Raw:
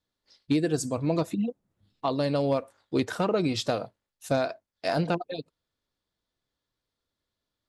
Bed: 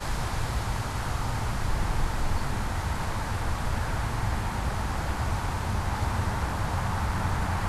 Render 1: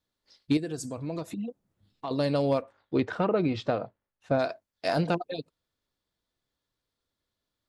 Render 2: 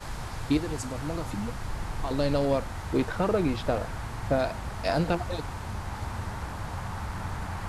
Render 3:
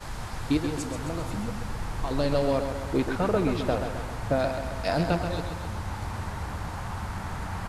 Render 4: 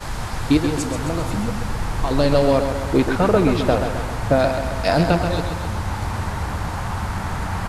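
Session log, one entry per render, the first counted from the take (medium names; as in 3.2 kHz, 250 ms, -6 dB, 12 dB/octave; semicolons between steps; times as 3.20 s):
0.57–2.11 s: compression 2:1, threshold -36 dBFS; 2.61–4.38 s: low-pass 3.2 kHz -> 1.9 kHz
add bed -6.5 dB
feedback delay 132 ms, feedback 57%, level -7.5 dB
trim +8.5 dB; peak limiter -3 dBFS, peak gain reduction 1.5 dB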